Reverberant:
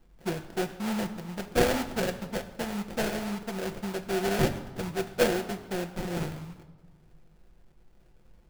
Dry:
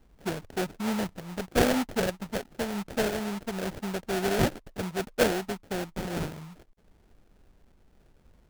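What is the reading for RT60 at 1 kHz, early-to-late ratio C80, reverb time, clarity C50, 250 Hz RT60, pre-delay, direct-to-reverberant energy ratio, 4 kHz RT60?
1.5 s, 13.5 dB, 1.4 s, 11.5 dB, 1.7 s, 6 ms, 5.0 dB, 0.95 s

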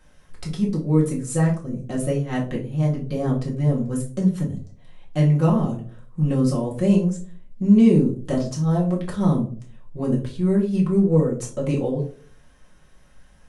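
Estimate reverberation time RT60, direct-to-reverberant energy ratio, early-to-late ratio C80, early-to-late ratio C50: 0.45 s, −4.5 dB, 13.5 dB, 9.5 dB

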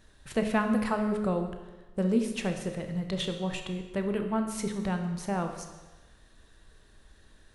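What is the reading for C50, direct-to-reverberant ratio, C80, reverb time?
7.0 dB, 5.0 dB, 9.0 dB, 1.2 s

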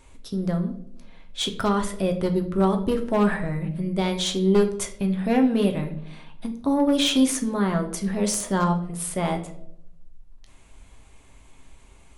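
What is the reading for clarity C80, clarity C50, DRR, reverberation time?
14.5 dB, 11.5 dB, 4.0 dB, 0.75 s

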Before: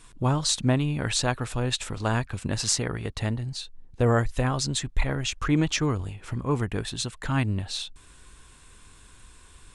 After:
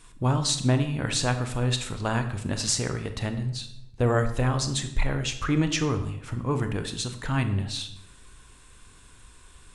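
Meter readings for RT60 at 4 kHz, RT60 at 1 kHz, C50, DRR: 0.60 s, 0.70 s, 10.5 dB, 7.5 dB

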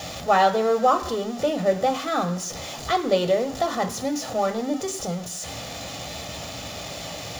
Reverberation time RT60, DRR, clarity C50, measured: 0.65 s, 7.5 dB, 13.5 dB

